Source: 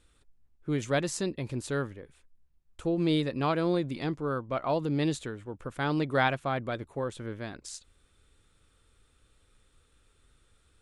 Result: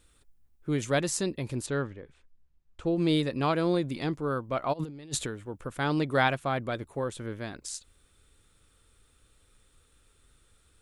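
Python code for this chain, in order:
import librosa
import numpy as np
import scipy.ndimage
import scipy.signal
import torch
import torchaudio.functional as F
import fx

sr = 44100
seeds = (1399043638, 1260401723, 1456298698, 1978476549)

y = fx.air_absorb(x, sr, metres=120.0, at=(1.66, 2.87))
y = fx.over_compress(y, sr, threshold_db=-35.0, ratio=-0.5, at=(4.72, 5.25), fade=0.02)
y = fx.high_shelf(y, sr, hz=9600.0, db=10.5)
y = y * librosa.db_to_amplitude(1.0)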